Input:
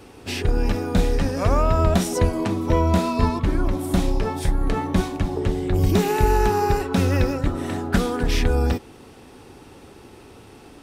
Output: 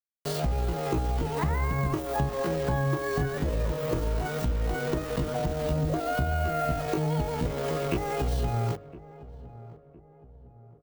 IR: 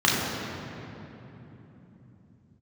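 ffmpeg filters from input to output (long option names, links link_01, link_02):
-filter_complex "[0:a]aemphasis=mode=reproduction:type=50kf,bandreject=frequency=1400:width=20,acrusher=bits=4:mix=0:aa=0.000001,tiltshelf=frequency=790:gain=4,acompressor=threshold=-22dB:ratio=4,aexciter=amount=9.6:drive=3.5:freq=11000,bandreject=frequency=60:width_type=h:width=6,bandreject=frequency=120:width_type=h:width=6,bandreject=frequency=180:width_type=h:width=6,asetrate=74167,aresample=44100,atempo=0.594604,asplit=2[link_01][link_02];[link_02]adelay=1011,lowpass=frequency=920:poles=1,volume=-17dB,asplit=2[link_03][link_04];[link_04]adelay=1011,lowpass=frequency=920:poles=1,volume=0.47,asplit=2[link_05][link_06];[link_06]adelay=1011,lowpass=frequency=920:poles=1,volume=0.47,asplit=2[link_07][link_08];[link_08]adelay=1011,lowpass=frequency=920:poles=1,volume=0.47[link_09];[link_03][link_05][link_07][link_09]amix=inputs=4:normalize=0[link_10];[link_01][link_10]amix=inputs=2:normalize=0,volume=-3dB"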